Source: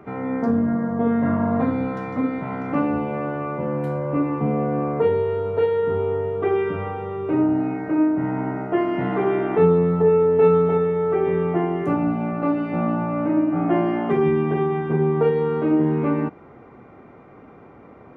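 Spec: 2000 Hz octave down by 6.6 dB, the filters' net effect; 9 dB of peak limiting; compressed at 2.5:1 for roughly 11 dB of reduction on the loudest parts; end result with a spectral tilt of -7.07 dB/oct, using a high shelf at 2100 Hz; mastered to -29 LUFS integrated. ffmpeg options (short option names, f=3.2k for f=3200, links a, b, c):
-af "equalizer=f=2k:t=o:g=-6,highshelf=f=2.1k:g=-5,acompressor=threshold=-30dB:ratio=2.5,volume=5dB,alimiter=limit=-21.5dB:level=0:latency=1"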